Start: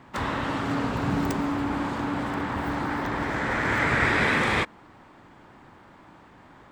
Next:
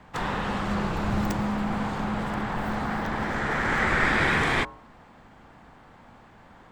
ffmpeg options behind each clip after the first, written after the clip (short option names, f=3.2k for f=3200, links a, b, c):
-af "bandreject=f=128.5:t=h:w=4,bandreject=f=257:t=h:w=4,bandreject=f=385.5:t=h:w=4,bandreject=f=514:t=h:w=4,bandreject=f=642.5:t=h:w=4,bandreject=f=771:t=h:w=4,bandreject=f=899.5:t=h:w=4,bandreject=f=1.028k:t=h:w=4,bandreject=f=1.1565k:t=h:w=4,bandreject=f=1.285k:t=h:w=4,bandreject=f=1.4135k:t=h:w=4,bandreject=f=1.542k:t=h:w=4,afreqshift=-76"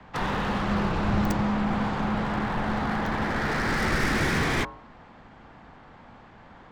-filter_complex "[0:a]acrossover=split=150|440|6800[a][b][c][d];[c]asoftclip=type=hard:threshold=-28.5dB[e];[d]acrusher=bits=5:mix=0:aa=0.5[f];[a][b][e][f]amix=inputs=4:normalize=0,volume=2dB"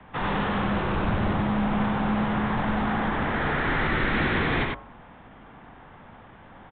-af "aresample=8000,volume=21.5dB,asoftclip=hard,volume=-21.5dB,aresample=44100,aecho=1:1:95:0.708"